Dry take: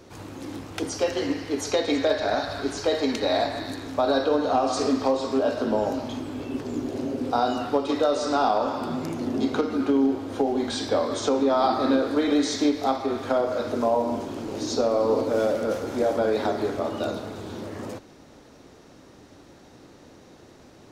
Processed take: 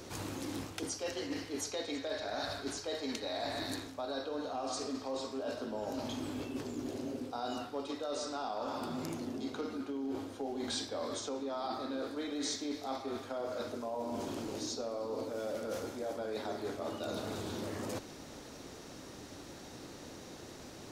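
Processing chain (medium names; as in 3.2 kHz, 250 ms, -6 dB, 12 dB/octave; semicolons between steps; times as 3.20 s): reverse; compression 10:1, threshold -36 dBFS, peak gain reduction 19 dB; reverse; treble shelf 3.4 kHz +8 dB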